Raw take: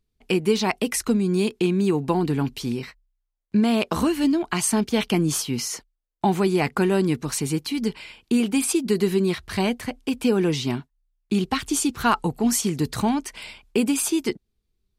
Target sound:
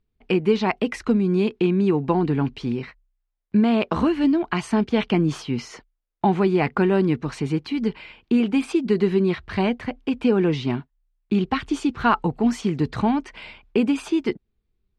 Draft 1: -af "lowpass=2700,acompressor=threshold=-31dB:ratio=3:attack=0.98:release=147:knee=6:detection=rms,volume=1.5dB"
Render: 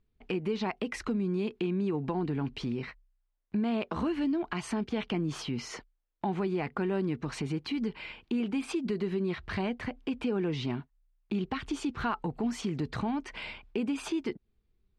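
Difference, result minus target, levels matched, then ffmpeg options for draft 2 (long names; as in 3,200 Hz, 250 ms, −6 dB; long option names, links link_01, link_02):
downward compressor: peak gain reduction +14 dB
-af "lowpass=2700,volume=1.5dB"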